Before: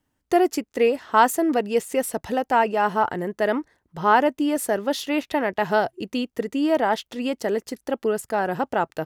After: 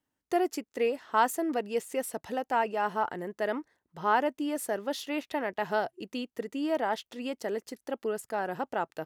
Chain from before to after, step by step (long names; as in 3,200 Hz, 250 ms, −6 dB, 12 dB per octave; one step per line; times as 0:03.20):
low-shelf EQ 110 Hz −11.5 dB
level −8 dB